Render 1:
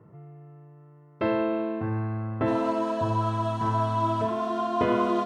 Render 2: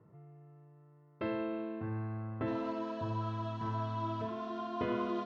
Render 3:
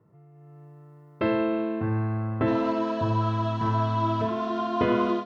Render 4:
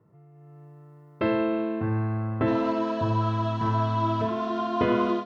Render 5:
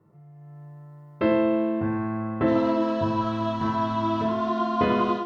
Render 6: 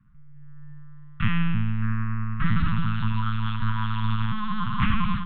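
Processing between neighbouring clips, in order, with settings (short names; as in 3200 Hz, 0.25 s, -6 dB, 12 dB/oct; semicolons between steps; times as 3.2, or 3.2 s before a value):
LPF 5500 Hz 24 dB/oct; dynamic EQ 780 Hz, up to -5 dB, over -37 dBFS, Q 1.3; gain -9 dB
AGC gain up to 11.5 dB
nothing audible
reverb RT60 0.30 s, pre-delay 5 ms, DRR 3.5 dB
LPC vocoder at 8 kHz pitch kept; Chebyshev band-stop 200–1300 Hz, order 3; de-hum 82.28 Hz, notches 4; gain +5.5 dB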